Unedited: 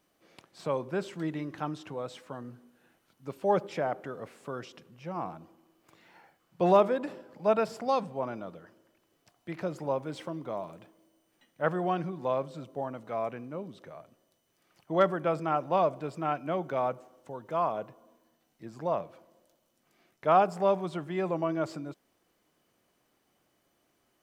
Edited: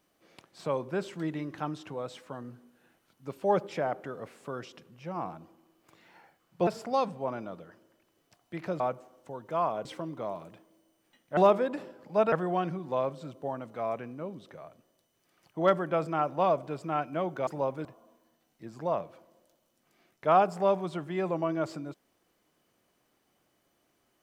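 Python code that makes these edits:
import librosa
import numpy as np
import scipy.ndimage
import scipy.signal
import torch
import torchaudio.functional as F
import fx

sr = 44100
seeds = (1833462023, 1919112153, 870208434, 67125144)

y = fx.edit(x, sr, fx.move(start_s=6.67, length_s=0.95, to_s=11.65),
    fx.swap(start_s=9.75, length_s=0.38, other_s=16.8, other_length_s=1.05), tone=tone)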